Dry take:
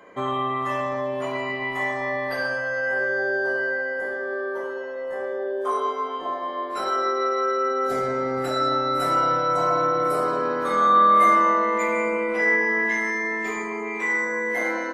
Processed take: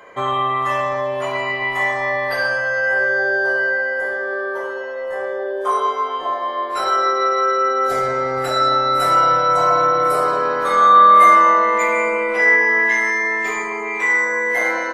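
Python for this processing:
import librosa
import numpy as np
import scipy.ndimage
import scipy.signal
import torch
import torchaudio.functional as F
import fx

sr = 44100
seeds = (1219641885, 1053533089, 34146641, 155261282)

y = fx.peak_eq(x, sr, hz=240.0, db=-11.5, octaves=1.3)
y = F.gain(torch.from_numpy(y), 7.5).numpy()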